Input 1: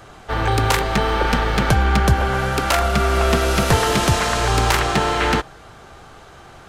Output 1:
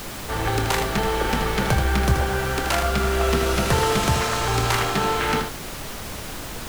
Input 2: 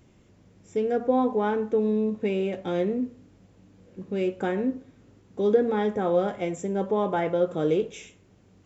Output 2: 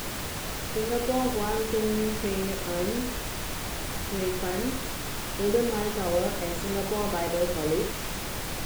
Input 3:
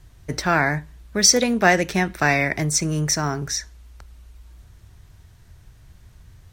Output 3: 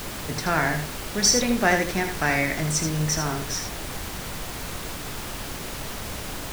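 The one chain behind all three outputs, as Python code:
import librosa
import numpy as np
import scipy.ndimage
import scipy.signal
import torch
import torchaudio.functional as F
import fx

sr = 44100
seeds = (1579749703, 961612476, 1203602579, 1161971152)

y = fx.doubler(x, sr, ms=25.0, db=-10.5)
y = y + 10.0 ** (-7.0 / 20.0) * np.pad(y, (int(79 * sr / 1000.0), 0))[:len(y)]
y = fx.dmg_noise_colour(y, sr, seeds[0], colour='pink', level_db=-28.0)
y = F.gain(torch.from_numpy(y), -5.0).numpy()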